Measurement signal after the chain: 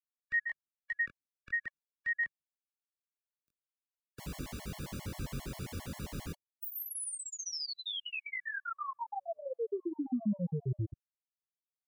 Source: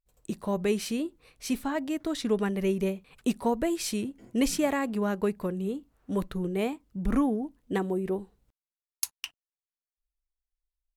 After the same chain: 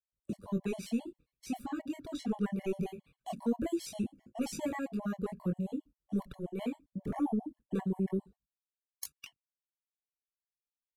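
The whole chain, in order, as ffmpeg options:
ffmpeg -i in.wav -filter_complex "[0:a]highpass=frequency=74:poles=1,agate=range=-24dB:threshold=-49dB:ratio=16:detection=peak,acrossover=split=270[link_01][link_02];[link_01]aeval=exprs='0.0794*sin(PI/2*2.82*val(0)/0.0794)':channel_layout=same[link_03];[link_03][link_02]amix=inputs=2:normalize=0,flanger=delay=20:depth=4.5:speed=0.23,afftfilt=real='re*gt(sin(2*PI*7.5*pts/sr)*(1-2*mod(floor(b*sr/1024/570),2)),0)':imag='im*gt(sin(2*PI*7.5*pts/sr)*(1-2*mod(floor(b*sr/1024/570),2)),0)':win_size=1024:overlap=0.75,volume=-5dB" out.wav

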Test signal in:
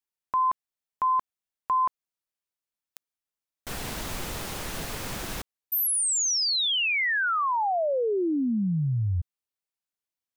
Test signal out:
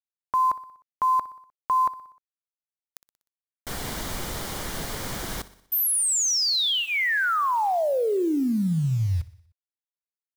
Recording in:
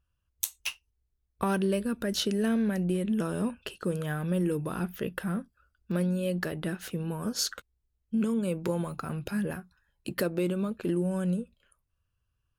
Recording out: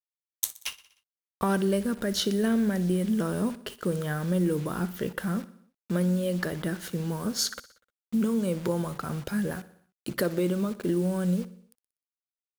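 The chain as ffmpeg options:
ffmpeg -i in.wav -filter_complex "[0:a]bandreject=frequency=2600:width=7,acrusher=bits=7:mix=0:aa=0.000001,asplit=2[link_01][link_02];[link_02]aecho=0:1:61|122|183|244|305:0.126|0.073|0.0424|0.0246|0.0142[link_03];[link_01][link_03]amix=inputs=2:normalize=0,volume=2dB" out.wav

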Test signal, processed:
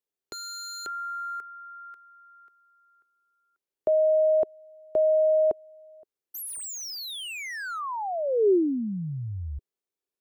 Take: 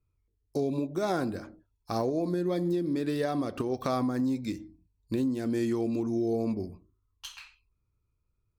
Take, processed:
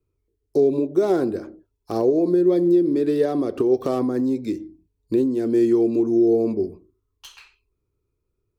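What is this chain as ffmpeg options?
ffmpeg -i in.wav -filter_complex "[0:a]equalizer=frequency=390:width_type=o:width=0.92:gain=15,acrossover=split=520|1000[link_01][link_02][link_03];[link_03]aeval=exprs='0.0224*(abs(mod(val(0)/0.0224+3,4)-2)-1)':channel_layout=same[link_04];[link_01][link_02][link_04]amix=inputs=3:normalize=0" out.wav

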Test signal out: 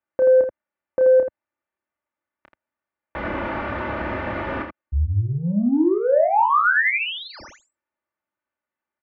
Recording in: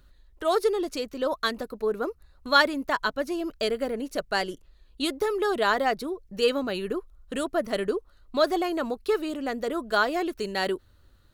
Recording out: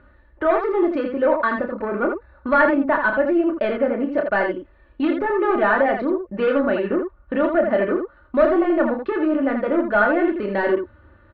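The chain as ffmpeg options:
ffmpeg -i in.wav -filter_complex "[0:a]highpass=88,aresample=16000,asoftclip=type=tanh:threshold=-22.5dB,aresample=44100,lowpass=frequency=2000:width=0.5412,lowpass=frequency=2000:width=1.3066,aecho=1:1:3.4:0.66,asplit=2[link_01][link_02];[link_02]acompressor=threshold=-35dB:ratio=6,volume=0dB[link_03];[link_01][link_03]amix=inputs=2:normalize=0,equalizer=frequency=260:width_type=o:width=0.61:gain=-3.5,aecho=1:1:29.15|81.63:0.501|0.501,volume=6dB" out.wav

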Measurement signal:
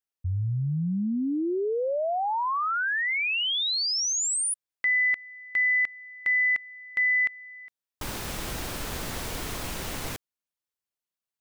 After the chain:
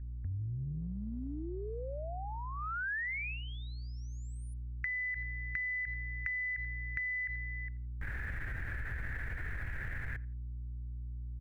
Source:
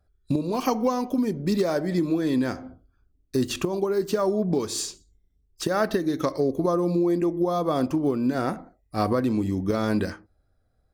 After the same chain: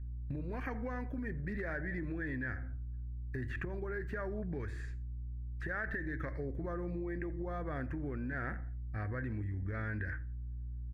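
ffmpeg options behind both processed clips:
ffmpeg -i in.wav -filter_complex "[0:a]highshelf=frequency=2200:gain=-9.5,acrossover=split=3200[link_01][link_02];[link_02]acompressor=threshold=-42dB:ratio=4:attack=1:release=60[link_03];[link_01][link_03]amix=inputs=2:normalize=0,agate=range=-8dB:threshold=-54dB:ratio=16:release=284:detection=peak,aeval=exprs='val(0)+0.01*(sin(2*PI*60*n/s)+sin(2*PI*2*60*n/s)/2+sin(2*PI*3*60*n/s)/3+sin(2*PI*4*60*n/s)/4+sin(2*PI*5*60*n/s)/5)':channel_layout=same,firequalizer=gain_entry='entry(100,0);entry(180,-16);entry(1100,-17);entry(1700,10);entry(2900,-17);entry(5000,-25);entry(8700,-22)':delay=0.05:min_phase=1,asplit=2[link_04][link_05];[link_05]adelay=85,lowpass=frequency=2400:poles=1,volume=-22.5dB,asplit=2[link_06][link_07];[link_07]adelay=85,lowpass=frequency=2400:poles=1,volume=0.27[link_08];[link_06][link_08]amix=inputs=2:normalize=0[link_09];[link_04][link_09]amix=inputs=2:normalize=0,acompressor=threshold=-38dB:ratio=8:attack=12:release=38:knee=1:detection=peak,volume=1dB" out.wav

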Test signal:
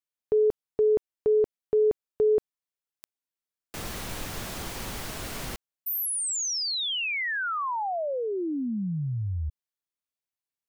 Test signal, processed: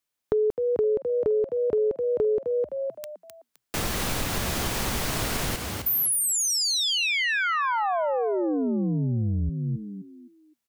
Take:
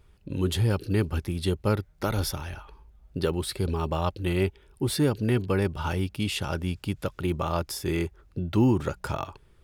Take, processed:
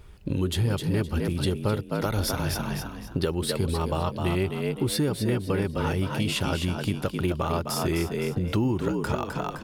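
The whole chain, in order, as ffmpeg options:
ffmpeg -i in.wav -filter_complex "[0:a]asplit=5[link_01][link_02][link_03][link_04][link_05];[link_02]adelay=258,afreqshift=58,volume=-6.5dB[link_06];[link_03]adelay=516,afreqshift=116,volume=-16.7dB[link_07];[link_04]adelay=774,afreqshift=174,volume=-26.8dB[link_08];[link_05]adelay=1032,afreqshift=232,volume=-37dB[link_09];[link_01][link_06][link_07][link_08][link_09]amix=inputs=5:normalize=0,acompressor=threshold=-31dB:ratio=5:attack=11:release=418:knee=1:detection=rms,volume=9dB" out.wav

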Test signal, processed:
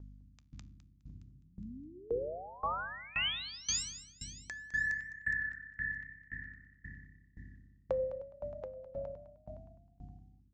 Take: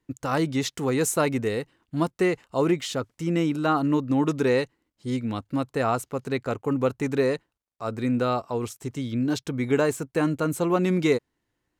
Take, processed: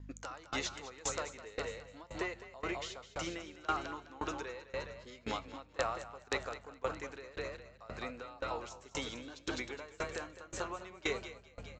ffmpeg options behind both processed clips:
ffmpeg -i in.wav -filter_complex "[0:a]highpass=660,acompressor=threshold=-40dB:ratio=4,flanger=delay=0.6:depth=1.8:regen=80:speed=0.29:shape=sinusoidal,aresample=16000,aeval=exprs='(mod(35.5*val(0)+1,2)-1)/35.5':channel_layout=same,aresample=44100,flanger=delay=9.7:depth=4.9:regen=-88:speed=0.97:shape=sinusoidal,aeval=exprs='val(0)+0.000708*(sin(2*PI*50*n/s)+sin(2*PI*2*50*n/s)/2+sin(2*PI*3*50*n/s)/3+sin(2*PI*4*50*n/s)/4+sin(2*PI*5*50*n/s)/5)':channel_layout=same,asplit=2[link_01][link_02];[link_02]asplit=7[link_03][link_04][link_05][link_06][link_07][link_08][link_09];[link_03]adelay=207,afreqshift=33,volume=-5.5dB[link_10];[link_04]adelay=414,afreqshift=66,volume=-10.7dB[link_11];[link_05]adelay=621,afreqshift=99,volume=-15.9dB[link_12];[link_06]adelay=828,afreqshift=132,volume=-21.1dB[link_13];[link_07]adelay=1035,afreqshift=165,volume=-26.3dB[link_14];[link_08]adelay=1242,afreqshift=198,volume=-31.5dB[link_15];[link_09]adelay=1449,afreqshift=231,volume=-36.7dB[link_16];[link_10][link_11][link_12][link_13][link_14][link_15][link_16]amix=inputs=7:normalize=0[link_17];[link_01][link_17]amix=inputs=2:normalize=0,aeval=exprs='val(0)*pow(10,-23*if(lt(mod(1.9*n/s,1),2*abs(1.9)/1000),1-mod(1.9*n/s,1)/(2*abs(1.9)/1000),(mod(1.9*n/s,1)-2*abs(1.9)/1000)/(1-2*abs(1.9)/1000))/20)':channel_layout=same,volume=16.5dB" out.wav

